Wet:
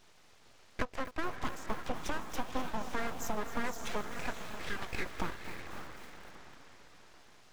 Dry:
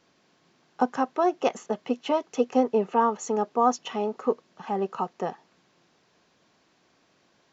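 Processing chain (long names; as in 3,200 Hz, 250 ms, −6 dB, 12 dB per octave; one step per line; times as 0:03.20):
0:04.01–0:05.06: high-pass filter 1,100 Hz 12 dB per octave
downward compressor 12 to 1, threshold −35 dBFS, peak gain reduction 20 dB
feedback delay with all-pass diffusion 549 ms, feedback 46%, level −7 dB
full-wave rectification
feedback echo at a low word length 258 ms, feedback 55%, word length 8 bits, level −13.5 dB
level +5 dB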